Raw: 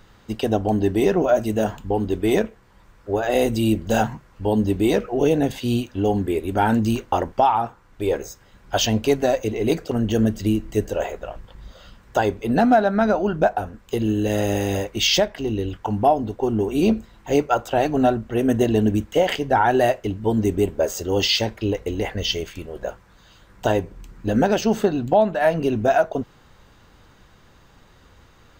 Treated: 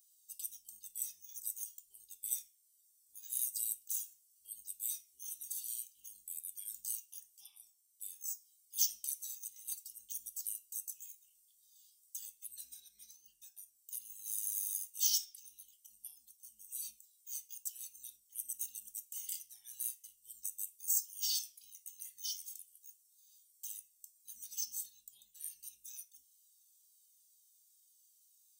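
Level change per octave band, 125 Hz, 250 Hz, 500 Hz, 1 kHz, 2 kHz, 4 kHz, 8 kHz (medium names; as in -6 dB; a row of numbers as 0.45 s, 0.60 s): under -40 dB, under -40 dB, under -40 dB, under -40 dB, under -40 dB, -18.5 dB, -3.0 dB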